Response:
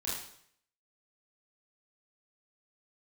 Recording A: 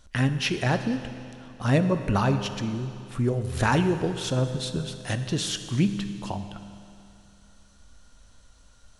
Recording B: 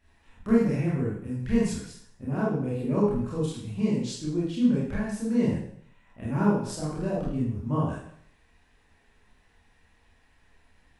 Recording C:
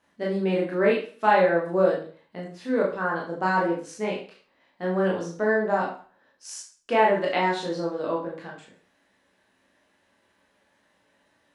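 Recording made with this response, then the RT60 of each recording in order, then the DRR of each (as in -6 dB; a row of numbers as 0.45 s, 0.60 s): B; 2.6 s, 0.65 s, 0.45 s; 8.5 dB, -7.5 dB, -3.5 dB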